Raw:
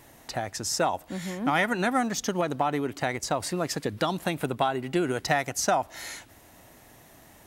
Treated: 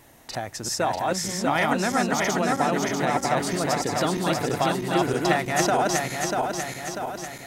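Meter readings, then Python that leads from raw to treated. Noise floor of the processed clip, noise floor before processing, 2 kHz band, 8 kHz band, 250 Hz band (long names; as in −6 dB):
−41 dBFS, −54 dBFS, +4.0 dB, +4.5 dB, +4.0 dB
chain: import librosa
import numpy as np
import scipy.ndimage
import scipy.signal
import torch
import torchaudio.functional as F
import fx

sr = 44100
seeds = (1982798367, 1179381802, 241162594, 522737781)

y = fx.reverse_delay_fb(x, sr, ms=321, feedback_pct=73, wet_db=-1)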